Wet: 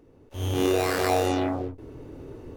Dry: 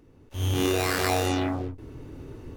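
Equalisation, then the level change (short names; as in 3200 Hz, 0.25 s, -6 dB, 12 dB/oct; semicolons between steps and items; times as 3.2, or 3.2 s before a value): bell 530 Hz +7.5 dB 1.7 oct; -3.0 dB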